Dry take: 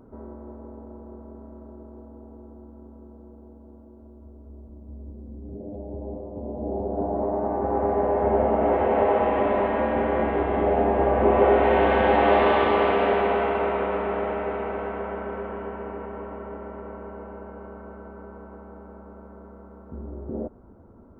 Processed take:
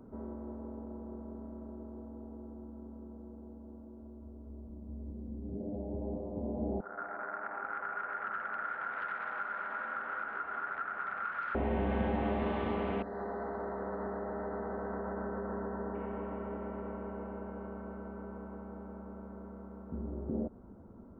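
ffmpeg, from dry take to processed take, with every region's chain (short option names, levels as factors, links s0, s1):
-filter_complex "[0:a]asettb=1/sr,asplit=3[s0][s1][s2];[s0]atrim=end=6.804[s3];[s1]atrim=start=6.8:end=11.55,asetpts=PTS-STARTPTS,afade=t=in:d=0.004:c=qsin,afade=t=out:st=4.746:d=0.004:c=qsin,aeval=exprs='0.501*sin(PI/2*5.01*val(0)/0.501)':c=same,bandpass=f=1400:t=q:w=16[s4];[s2]atrim=start=11.546[s5];[s3][s4]acrossfade=d=0.004:c1=hsin:c2=qsin[s6];[s6][s5]acrossfade=d=0.004:c1=qsin:c2=hsin,asettb=1/sr,asplit=3[s7][s8][s9];[s7]atrim=end=13.024[s10];[s8]atrim=start=13.02:end=15.95,asetpts=PTS-STARTPTS,afade=t=in:d=0.004:c=qsin,afade=t=out:st=2.926:d=0.004:c=qsin,acompressor=threshold=0.0398:ratio=10:attack=3.2:release=140:knee=1:detection=peak,asuperstop=centerf=2800:order=12:qfactor=1.3[s11];[s9]atrim=start=15.946[s12];[s10][s11]acrossfade=d=0.004:c1=hsin:c2=qsin[s13];[s13][s12]acrossfade=d=0.004:c1=qsin:c2=hsin,equalizer=f=200:t=o:w=0.75:g=5.5,acrossover=split=220[s14][s15];[s15]acompressor=threshold=0.0282:ratio=5[s16];[s14][s16]amix=inputs=2:normalize=0,volume=0.596"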